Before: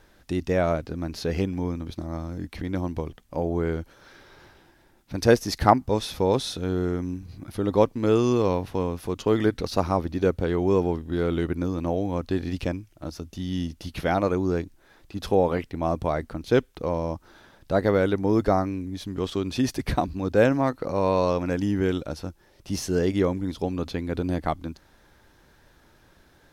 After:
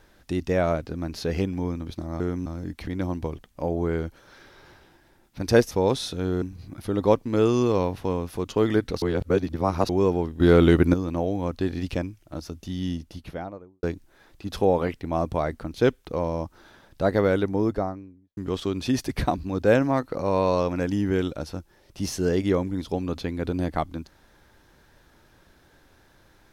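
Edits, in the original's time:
5.45–6.15 s: delete
6.86–7.12 s: move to 2.20 s
9.72–10.59 s: reverse
11.10–11.64 s: gain +9 dB
13.45–14.53 s: studio fade out
18.02–19.07 s: studio fade out

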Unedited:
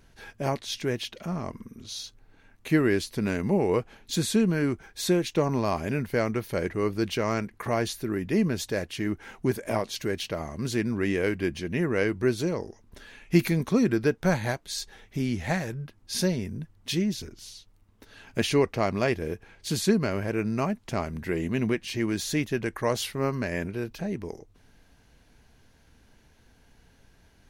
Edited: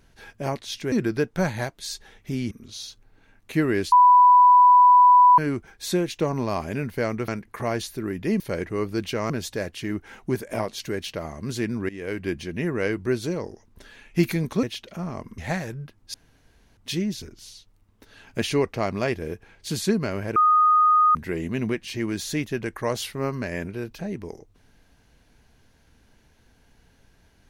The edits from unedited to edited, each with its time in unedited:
0.92–1.67 s: swap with 13.79–15.38 s
3.08–4.54 s: bleep 990 Hz -10 dBFS
6.44–7.34 s: move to 8.46 s
11.05–11.42 s: fade in, from -18.5 dB
16.14–16.77 s: room tone
20.36–21.15 s: bleep 1.24 kHz -14 dBFS

